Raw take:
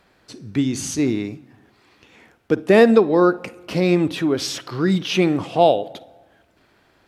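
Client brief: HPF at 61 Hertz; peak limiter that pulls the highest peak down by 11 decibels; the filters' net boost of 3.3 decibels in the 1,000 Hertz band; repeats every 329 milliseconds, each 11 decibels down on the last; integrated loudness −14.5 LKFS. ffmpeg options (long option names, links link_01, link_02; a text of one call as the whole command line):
ffmpeg -i in.wav -af "highpass=61,equalizer=frequency=1000:width_type=o:gain=5,alimiter=limit=-11dB:level=0:latency=1,aecho=1:1:329|658|987:0.282|0.0789|0.0221,volume=7.5dB" out.wav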